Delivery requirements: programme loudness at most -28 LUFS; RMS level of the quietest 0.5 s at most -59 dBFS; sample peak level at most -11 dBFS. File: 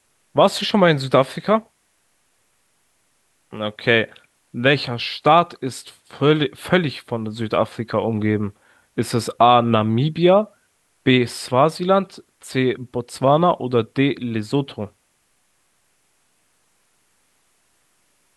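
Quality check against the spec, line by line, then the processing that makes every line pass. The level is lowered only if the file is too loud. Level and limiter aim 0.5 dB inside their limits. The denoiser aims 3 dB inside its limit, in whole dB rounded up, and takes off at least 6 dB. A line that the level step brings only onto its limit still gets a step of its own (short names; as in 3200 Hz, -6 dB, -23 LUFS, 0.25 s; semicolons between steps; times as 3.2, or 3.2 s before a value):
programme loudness -19.5 LUFS: fail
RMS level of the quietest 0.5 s -65 dBFS: OK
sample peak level -2.0 dBFS: fail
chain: gain -9 dB; limiter -11.5 dBFS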